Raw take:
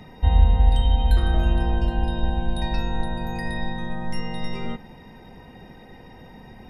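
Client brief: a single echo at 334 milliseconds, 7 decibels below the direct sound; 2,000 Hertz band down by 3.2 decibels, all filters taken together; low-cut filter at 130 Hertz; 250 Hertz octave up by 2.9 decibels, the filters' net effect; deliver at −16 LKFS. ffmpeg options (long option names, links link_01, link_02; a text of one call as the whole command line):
ffmpeg -i in.wav -af "highpass=130,equalizer=frequency=250:width_type=o:gain=4.5,equalizer=frequency=2000:width_type=o:gain=-4,aecho=1:1:334:0.447,volume=12.5dB" out.wav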